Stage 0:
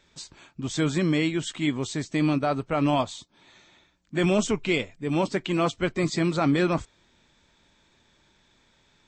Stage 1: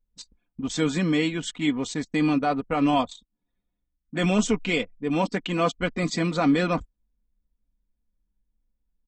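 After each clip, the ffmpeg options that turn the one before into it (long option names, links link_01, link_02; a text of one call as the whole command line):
ffmpeg -i in.wav -af "anlmdn=1.58,aecho=1:1:4.1:0.6" out.wav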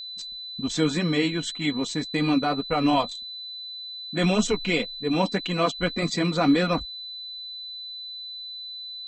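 ffmpeg -i in.wav -af "flanger=delay=1.4:depth=4.7:regen=-55:speed=1.8:shape=sinusoidal,aeval=exprs='val(0)+0.0112*sin(2*PI*4000*n/s)':channel_layout=same,volume=4.5dB" out.wav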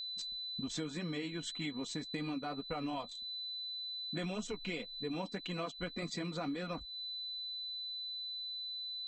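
ffmpeg -i in.wav -af "acompressor=threshold=-32dB:ratio=6,volume=-5dB" out.wav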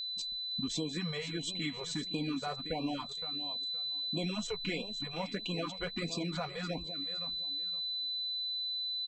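ffmpeg -i in.wav -filter_complex "[0:a]asplit=2[link_01][link_02];[link_02]aecho=0:1:516|1032|1548:0.266|0.0612|0.0141[link_03];[link_01][link_03]amix=inputs=2:normalize=0,afftfilt=real='re*(1-between(b*sr/1024,240*pow(1700/240,0.5+0.5*sin(2*PI*1.5*pts/sr))/1.41,240*pow(1700/240,0.5+0.5*sin(2*PI*1.5*pts/sr))*1.41))':imag='im*(1-between(b*sr/1024,240*pow(1700/240,0.5+0.5*sin(2*PI*1.5*pts/sr))/1.41,240*pow(1700/240,0.5+0.5*sin(2*PI*1.5*pts/sr))*1.41))':win_size=1024:overlap=0.75,volume=3.5dB" out.wav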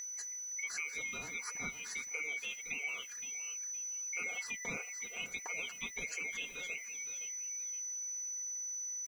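ffmpeg -i in.wav -af "afftfilt=real='real(if(lt(b,920),b+92*(1-2*mod(floor(b/92),2)),b),0)':imag='imag(if(lt(b,920),b+92*(1-2*mod(floor(b/92),2)),b),0)':win_size=2048:overlap=0.75,aeval=exprs='val(0)*gte(abs(val(0)),0.00299)':channel_layout=same,volume=-4.5dB" out.wav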